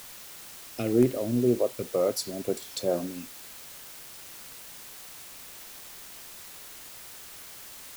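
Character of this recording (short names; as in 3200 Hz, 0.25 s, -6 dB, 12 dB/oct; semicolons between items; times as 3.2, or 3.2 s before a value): phasing stages 2, 2.1 Hz, lowest notch 790–4600 Hz; a quantiser's noise floor 8-bit, dither triangular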